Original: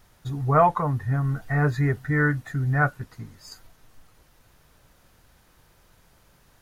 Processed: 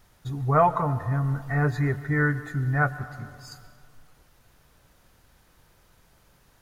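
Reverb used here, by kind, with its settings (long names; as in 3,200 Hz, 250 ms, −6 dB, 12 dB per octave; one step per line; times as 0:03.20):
dense smooth reverb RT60 2.1 s, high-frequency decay 0.4×, pre-delay 110 ms, DRR 14 dB
level −1.5 dB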